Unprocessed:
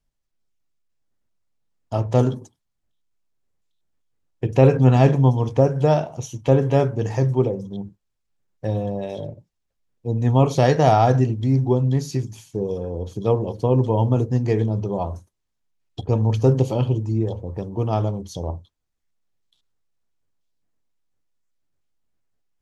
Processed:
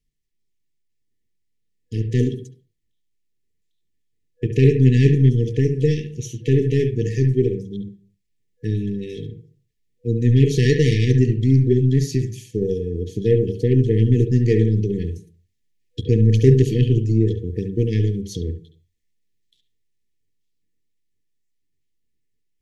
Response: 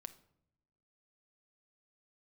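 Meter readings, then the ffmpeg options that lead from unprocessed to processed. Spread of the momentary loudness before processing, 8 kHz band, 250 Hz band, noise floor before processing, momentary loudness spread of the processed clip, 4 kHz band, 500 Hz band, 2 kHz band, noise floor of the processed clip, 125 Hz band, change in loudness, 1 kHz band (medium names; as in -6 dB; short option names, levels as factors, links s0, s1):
15 LU, no reading, +2.5 dB, -76 dBFS, 16 LU, +3.0 dB, -0.5 dB, +2.0 dB, -70 dBFS, +2.5 dB, +1.5 dB, under -40 dB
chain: -filter_complex "[0:a]asplit=2[s0][s1];[s1]highpass=130,equalizer=f=140:t=q:w=4:g=4,equalizer=f=250:t=q:w=4:g=-9,equalizer=f=1400:t=q:w=4:g=8,lowpass=f=3800:w=0.5412,lowpass=f=3800:w=1.3066[s2];[1:a]atrim=start_sample=2205,afade=t=out:st=0.28:d=0.01,atrim=end_sample=12789,adelay=69[s3];[s2][s3]afir=irnorm=-1:irlink=0,volume=0.75[s4];[s0][s4]amix=inputs=2:normalize=0,dynaudnorm=f=400:g=21:m=5.01,aeval=exprs='0.944*(cos(1*acos(clip(val(0)/0.944,-1,1)))-cos(1*PI/2))+0.0473*(cos(2*acos(clip(val(0)/0.944,-1,1)))-cos(2*PI/2))+0.00841*(cos(6*acos(clip(val(0)/0.944,-1,1)))-cos(6*PI/2))+0.0473*(cos(8*acos(clip(val(0)/0.944,-1,1)))-cos(8*PI/2))':c=same,afftfilt=real='re*(1-between(b*sr/4096,490,1700))':imag='im*(1-between(b*sr/4096,490,1700))':win_size=4096:overlap=0.75"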